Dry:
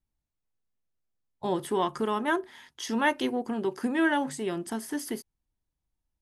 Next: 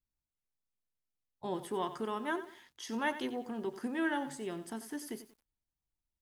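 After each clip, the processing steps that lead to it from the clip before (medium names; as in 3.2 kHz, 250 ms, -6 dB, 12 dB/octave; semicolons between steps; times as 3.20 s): bit-crushed delay 92 ms, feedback 35%, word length 8-bit, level -12.5 dB; trim -8.5 dB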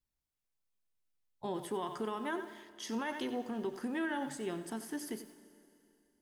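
peak limiter -29.5 dBFS, peak gain reduction 8.5 dB; Schroeder reverb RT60 2.8 s, combs from 29 ms, DRR 14.5 dB; trim +1 dB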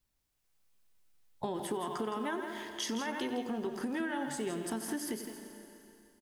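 compression 6:1, threshold -46 dBFS, peak gain reduction 13 dB; delay 165 ms -8.5 dB; level rider gain up to 4 dB; trim +8 dB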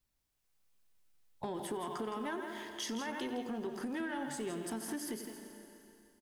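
saturation -27.5 dBFS, distortion -22 dB; trim -2 dB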